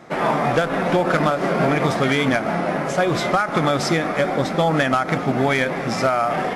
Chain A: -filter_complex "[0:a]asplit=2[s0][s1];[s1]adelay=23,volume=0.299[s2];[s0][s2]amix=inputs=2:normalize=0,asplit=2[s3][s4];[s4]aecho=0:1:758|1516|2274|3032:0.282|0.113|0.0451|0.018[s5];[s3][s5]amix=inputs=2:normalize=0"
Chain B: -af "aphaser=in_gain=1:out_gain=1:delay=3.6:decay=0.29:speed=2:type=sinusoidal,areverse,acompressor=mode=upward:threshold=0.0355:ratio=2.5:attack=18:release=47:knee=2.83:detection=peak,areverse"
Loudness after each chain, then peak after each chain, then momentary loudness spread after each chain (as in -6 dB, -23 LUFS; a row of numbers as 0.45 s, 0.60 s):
-19.0 LUFS, -19.0 LUFS; -7.0 dBFS, -7.0 dBFS; 3 LU, 3 LU